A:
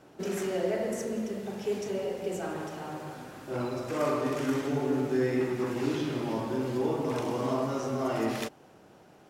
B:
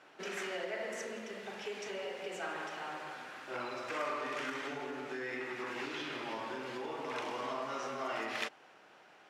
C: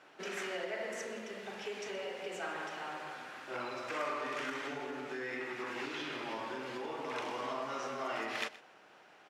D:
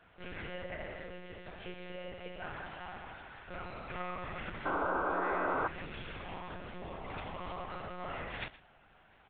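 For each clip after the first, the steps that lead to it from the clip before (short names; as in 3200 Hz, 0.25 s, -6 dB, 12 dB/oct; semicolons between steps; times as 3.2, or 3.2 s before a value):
compressor, threshold -29 dBFS, peak gain reduction 6.5 dB; band-pass 2100 Hz, Q 0.96; gain +5 dB
echo 0.122 s -18 dB
monotone LPC vocoder at 8 kHz 180 Hz; painted sound noise, 4.65–5.68, 250–1600 Hz -30 dBFS; gain -3 dB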